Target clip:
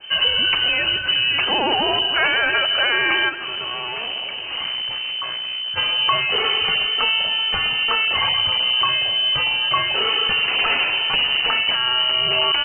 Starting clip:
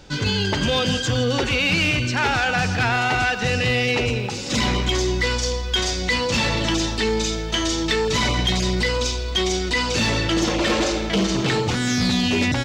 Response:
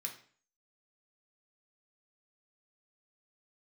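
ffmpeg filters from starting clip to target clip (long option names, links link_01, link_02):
-filter_complex "[0:a]lowshelf=frequency=86:gain=9.5,alimiter=limit=-12.5dB:level=0:latency=1:release=315,asplit=3[link_01][link_02][link_03];[link_01]afade=type=out:start_time=3.28:duration=0.02[link_04];[link_02]aeval=exprs='(tanh(28.2*val(0)+0.35)-tanh(0.35))/28.2':channel_layout=same,afade=type=in:start_time=3.28:duration=0.02,afade=type=out:start_time=5.76:duration=0.02[link_05];[link_03]afade=type=in:start_time=5.76:duration=0.02[link_06];[link_04][link_05][link_06]amix=inputs=3:normalize=0,lowpass=frequency=2600:width_type=q:width=0.5098,lowpass=frequency=2600:width_type=q:width=0.6013,lowpass=frequency=2600:width_type=q:width=0.9,lowpass=frequency=2600:width_type=q:width=2.563,afreqshift=-3100,adynamicequalizer=threshold=0.0251:dfrequency=2100:dqfactor=0.7:tfrequency=2100:tqfactor=0.7:attack=5:release=100:ratio=0.375:range=2.5:mode=cutabove:tftype=highshelf,volume=5.5dB"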